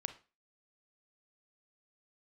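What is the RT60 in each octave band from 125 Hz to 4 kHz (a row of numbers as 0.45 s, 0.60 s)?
0.30 s, 0.35 s, 0.30 s, 0.30 s, 0.30 s, 0.30 s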